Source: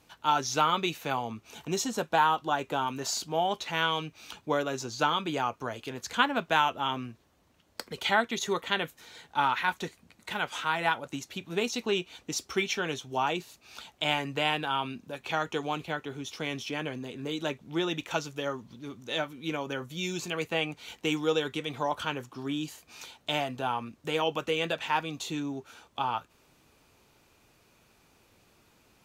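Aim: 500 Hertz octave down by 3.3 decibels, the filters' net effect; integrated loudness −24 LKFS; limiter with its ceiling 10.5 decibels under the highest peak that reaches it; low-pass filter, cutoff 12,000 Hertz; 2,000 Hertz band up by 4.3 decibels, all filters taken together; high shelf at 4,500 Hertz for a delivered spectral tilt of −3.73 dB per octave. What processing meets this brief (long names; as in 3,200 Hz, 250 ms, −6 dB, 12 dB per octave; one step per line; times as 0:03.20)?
low-pass filter 12,000 Hz
parametric band 500 Hz −4.5 dB
parametric band 2,000 Hz +8 dB
high-shelf EQ 4,500 Hz −8.5 dB
level +8.5 dB
brickwall limiter −9.5 dBFS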